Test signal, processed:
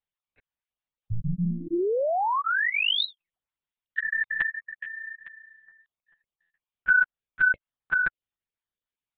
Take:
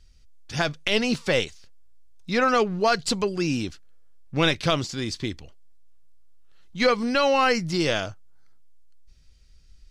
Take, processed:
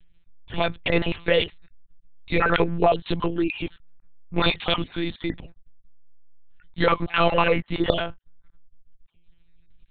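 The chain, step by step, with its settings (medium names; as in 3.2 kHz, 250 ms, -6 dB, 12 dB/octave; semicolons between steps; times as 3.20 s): random holes in the spectrogram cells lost 23%; monotone LPC vocoder at 8 kHz 170 Hz; trim +3 dB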